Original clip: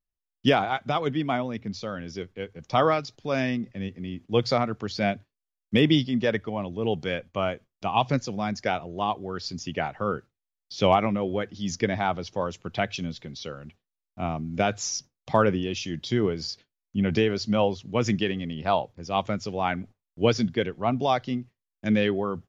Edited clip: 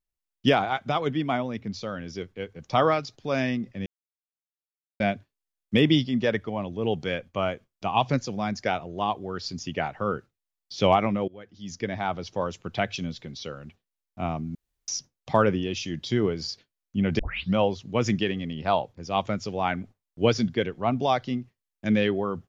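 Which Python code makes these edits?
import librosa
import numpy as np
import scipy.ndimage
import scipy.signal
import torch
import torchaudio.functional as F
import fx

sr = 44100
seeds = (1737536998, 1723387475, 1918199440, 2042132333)

y = fx.edit(x, sr, fx.silence(start_s=3.86, length_s=1.14),
    fx.fade_in_from(start_s=11.28, length_s=1.09, floor_db=-24.0),
    fx.room_tone_fill(start_s=14.55, length_s=0.33),
    fx.tape_start(start_s=17.19, length_s=0.35), tone=tone)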